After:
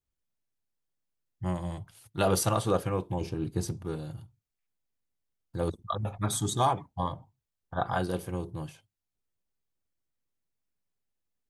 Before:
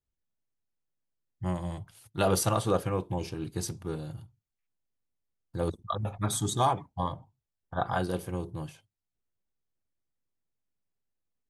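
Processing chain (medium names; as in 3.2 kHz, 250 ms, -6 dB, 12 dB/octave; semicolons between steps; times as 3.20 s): 3.21–3.85 s: tilt shelf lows +4 dB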